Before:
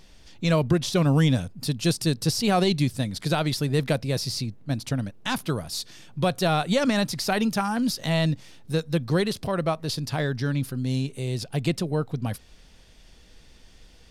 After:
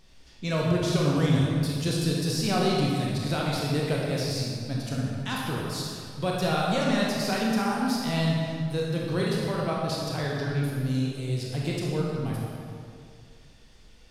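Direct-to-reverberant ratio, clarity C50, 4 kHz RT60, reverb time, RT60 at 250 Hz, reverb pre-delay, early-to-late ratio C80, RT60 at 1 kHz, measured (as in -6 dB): -4.0 dB, -1.5 dB, 1.6 s, 2.3 s, 2.3 s, 24 ms, 0.5 dB, 2.3 s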